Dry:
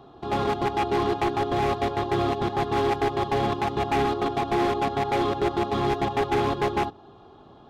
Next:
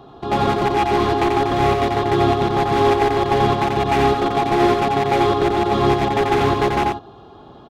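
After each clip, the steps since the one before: echo 88 ms -4 dB; gain +6 dB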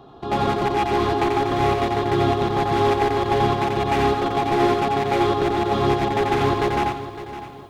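lo-fi delay 0.558 s, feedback 35%, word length 8-bit, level -13 dB; gain -3 dB

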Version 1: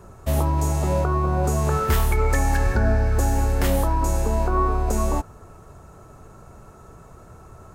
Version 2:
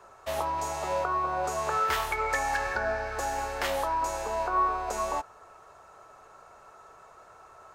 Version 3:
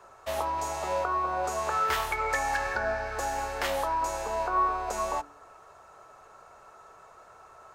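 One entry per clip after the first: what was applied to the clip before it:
three-band isolator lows -24 dB, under 530 Hz, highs -12 dB, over 6000 Hz
de-hum 48.23 Hz, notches 9

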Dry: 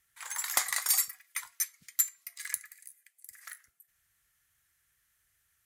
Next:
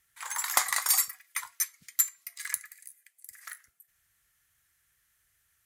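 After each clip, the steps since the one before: dynamic EQ 1000 Hz, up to +6 dB, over -55 dBFS, Q 1.5; gain +2 dB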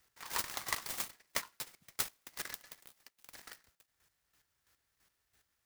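compressor 3:1, threshold -31 dBFS, peak gain reduction 10 dB; chopper 3 Hz, depth 65%, duty 25%; noise-modulated delay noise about 3000 Hz, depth 0.08 ms; gain +1 dB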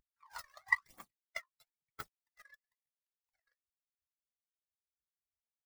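in parallel at -0.5 dB: upward compressor, threshold -46 dBFS; on the sum: phaser 1 Hz, delay 1.9 ms, feedback 50%; spectral expander 2.5:1; gain -5.5 dB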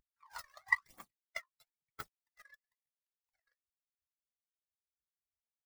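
nothing audible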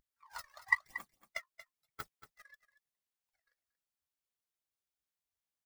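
echo 0.232 s -14 dB; gain +1 dB

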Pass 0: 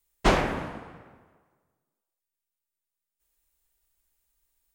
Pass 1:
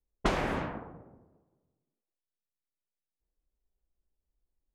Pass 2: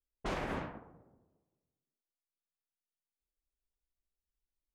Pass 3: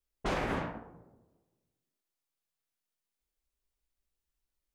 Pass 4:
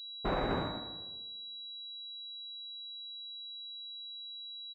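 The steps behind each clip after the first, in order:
low-pass opened by the level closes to 460 Hz, open at -23 dBFS; compressor 12:1, threshold -24 dBFS, peak gain reduction 10 dB
limiter -22.5 dBFS, peak gain reduction 9 dB; upward expander 1.5:1, over -43 dBFS; gain -4 dB
resonator 57 Hz, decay 0.34 s, harmonics all, mix 60%; gain +9 dB
feedback echo 80 ms, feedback 55%, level -9.5 dB; pulse-width modulation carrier 3900 Hz

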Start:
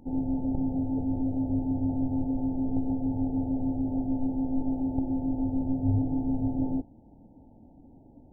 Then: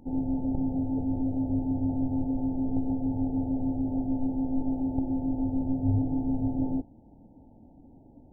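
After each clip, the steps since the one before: nothing audible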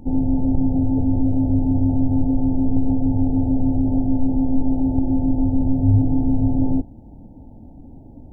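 low shelf 150 Hz +9.5 dB; in parallel at +2.5 dB: limiter -18.5 dBFS, peak gain reduction 9.5 dB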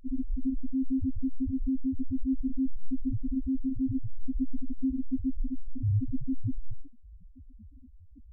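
overloaded stage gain 16 dB; flutter echo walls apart 6.3 m, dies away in 0.27 s; loudest bins only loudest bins 1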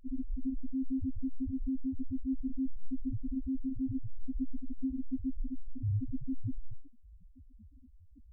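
ending taper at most 160 dB/s; gain -5 dB

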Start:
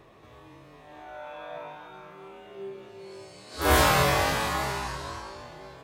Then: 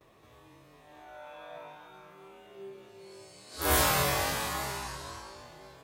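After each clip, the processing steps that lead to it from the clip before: gate with hold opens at -46 dBFS; high shelf 6100 Hz +11 dB; gain -6.5 dB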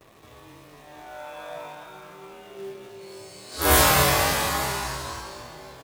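in parallel at -5.5 dB: companded quantiser 4-bit; on the sum: echo 0.256 s -12 dB; gain +4 dB

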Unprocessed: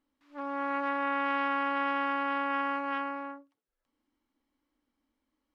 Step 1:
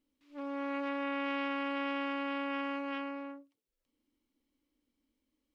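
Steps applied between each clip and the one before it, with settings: band shelf 1100 Hz -9 dB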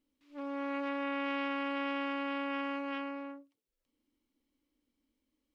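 nothing audible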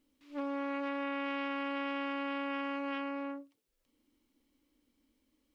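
compressor 3:1, threshold -40 dBFS, peak gain reduction 8 dB; gain +6.5 dB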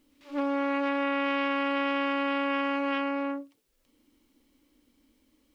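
pre-echo 99 ms -18.5 dB; gain +8.5 dB

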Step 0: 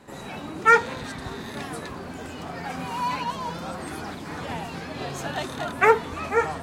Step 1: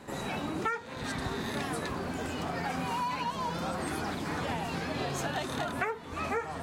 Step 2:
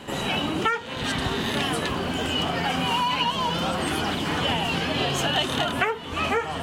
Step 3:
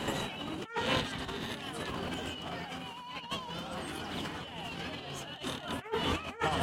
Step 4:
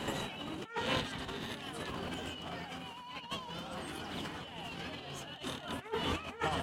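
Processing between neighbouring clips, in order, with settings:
compressor 20:1, threshold -31 dBFS, peak gain reduction 21.5 dB; gain +2 dB
bell 3000 Hz +15 dB 0.29 oct; gain +7.5 dB
negative-ratio compressor -32 dBFS, ratio -0.5; gain -3.5 dB
echo 0.383 s -22 dB; gain -3 dB

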